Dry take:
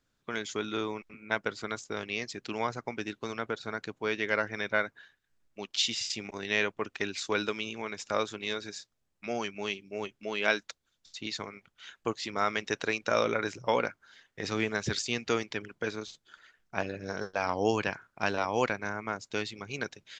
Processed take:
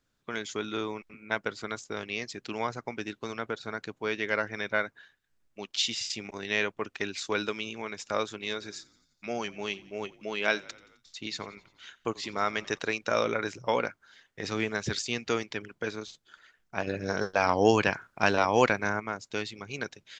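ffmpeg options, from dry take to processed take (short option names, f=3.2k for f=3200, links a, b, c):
-filter_complex "[0:a]asettb=1/sr,asplit=3[a][b][c];[a]atrim=end=8.524[d];[b]atrim=start=8.52:end=12.79,asetpts=PTS-STARTPTS,afade=t=in:d=0.004:c=qsin,afade=t=out:st=4.266:d=0.004:c=qsin,asplit=6[e][f][g][h][i][j];[f]adelay=87,afreqshift=-36,volume=-22.5dB[k];[g]adelay=174,afreqshift=-72,volume=-26.2dB[l];[h]adelay=261,afreqshift=-108,volume=-30dB[m];[i]adelay=348,afreqshift=-144,volume=-33.7dB[n];[j]adelay=435,afreqshift=-180,volume=-37.5dB[o];[e][k][l][m][n][o]amix=inputs=6:normalize=0,atrim=end_sample=188307[p];[c]atrim=start=12.786[q];[d][p]acrossfade=d=0.004:c1=hsin:c2=qsin[r];[r][q]acrossfade=d=0.004:c1=qsin:c2=hsin,asettb=1/sr,asplit=3[s][t][u];[s]atrim=end=16.874[v];[t]atrim=start=16.87:end=19,asetpts=PTS-STARTPTS,afade=t=in:d=0.004:c=qsin,afade=t=out:st=2.126:d=0.004:c=qsin,acontrast=45[w];[u]atrim=start=18.996[x];[v][w]acrossfade=d=0.004:c1=hsin:c2=qsin[y];[y][x]acrossfade=d=0.004:c1=qsin:c2=hsin"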